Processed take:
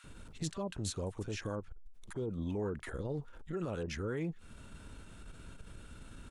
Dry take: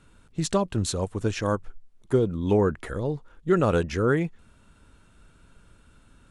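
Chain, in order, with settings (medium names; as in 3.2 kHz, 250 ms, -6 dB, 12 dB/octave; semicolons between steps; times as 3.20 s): compression 8:1, threshold -37 dBFS, peak gain reduction 20 dB; peak limiter -34 dBFS, peak gain reduction 10 dB; bands offset in time highs, lows 40 ms, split 1.1 kHz; transformer saturation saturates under 150 Hz; trim +6 dB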